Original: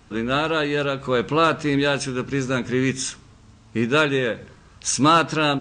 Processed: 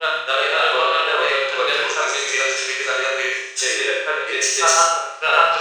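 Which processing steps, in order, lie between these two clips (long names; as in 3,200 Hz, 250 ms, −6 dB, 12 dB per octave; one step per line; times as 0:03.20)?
elliptic high-pass filter 420 Hz, stop band 40 dB
treble cut that deepens with the level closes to 1,500 Hz, closed at −15 dBFS
tilt shelving filter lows −7 dB, about 1,300 Hz
in parallel at −3.5 dB: soft clipping −19 dBFS, distortion −12 dB
on the sum: granular cloud, grains 20 per second, spray 610 ms, pitch spread up and down by 0 semitones
on a send: flutter between parallel walls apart 5.7 metres, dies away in 0.65 s
on the sum: reverb whose tail is shaped and stops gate 150 ms flat, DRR 0.5 dB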